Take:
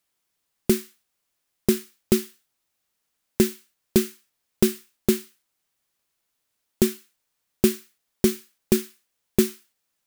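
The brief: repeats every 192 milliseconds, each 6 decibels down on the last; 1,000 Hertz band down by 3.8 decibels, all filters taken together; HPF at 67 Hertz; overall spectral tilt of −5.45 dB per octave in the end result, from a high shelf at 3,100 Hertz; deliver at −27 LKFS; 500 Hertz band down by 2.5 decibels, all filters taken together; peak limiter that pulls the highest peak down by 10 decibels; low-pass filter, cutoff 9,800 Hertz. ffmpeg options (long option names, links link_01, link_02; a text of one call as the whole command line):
ffmpeg -i in.wav -af "highpass=67,lowpass=9800,equalizer=frequency=500:width_type=o:gain=-3.5,equalizer=frequency=1000:width_type=o:gain=-3,highshelf=frequency=3100:gain=-7.5,alimiter=limit=-17dB:level=0:latency=1,aecho=1:1:192|384|576|768|960|1152:0.501|0.251|0.125|0.0626|0.0313|0.0157,volume=7dB" out.wav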